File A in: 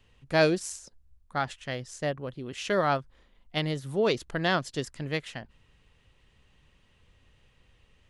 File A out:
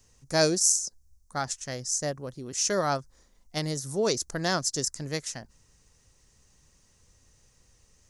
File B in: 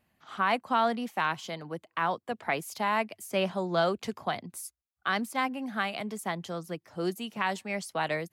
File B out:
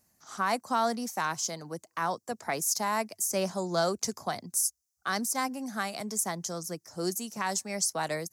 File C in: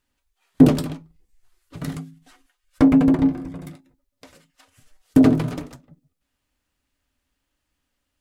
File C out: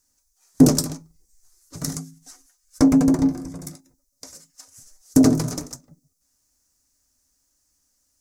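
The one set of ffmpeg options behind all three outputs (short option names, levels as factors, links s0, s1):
-af "highshelf=f=4300:t=q:w=3:g=12,volume=0.891"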